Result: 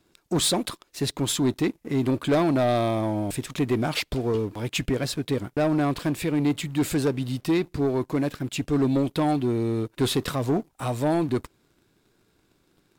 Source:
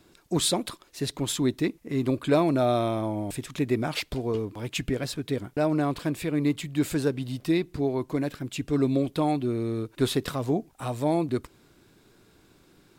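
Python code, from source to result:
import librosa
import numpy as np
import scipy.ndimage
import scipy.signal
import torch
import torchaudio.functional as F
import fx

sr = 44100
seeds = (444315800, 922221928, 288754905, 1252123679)

y = fx.leveller(x, sr, passes=2)
y = y * 10.0 ** (-3.5 / 20.0)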